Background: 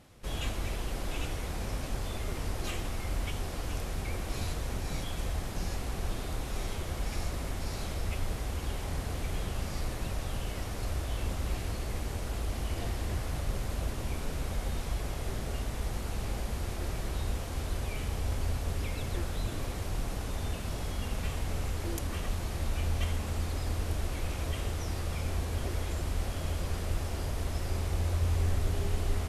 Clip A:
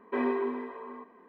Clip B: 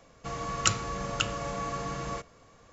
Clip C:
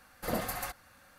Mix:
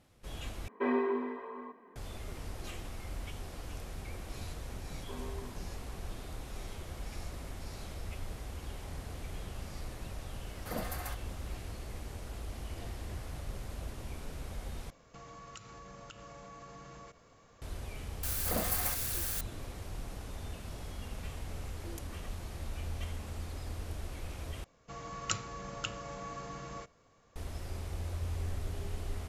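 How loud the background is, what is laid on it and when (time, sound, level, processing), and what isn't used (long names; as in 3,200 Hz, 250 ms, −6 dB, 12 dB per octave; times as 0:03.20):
background −8 dB
0:00.68: overwrite with A −1.5 dB
0:04.96: mix in A −16 dB + Chebyshev low-pass filter 1,100 Hz
0:10.43: mix in C −5.5 dB
0:14.90: overwrite with B −4 dB + downward compressor 5 to 1, threshold −44 dBFS
0:18.23: mix in C −2.5 dB + spike at every zero crossing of −26 dBFS
0:24.64: overwrite with B −9 dB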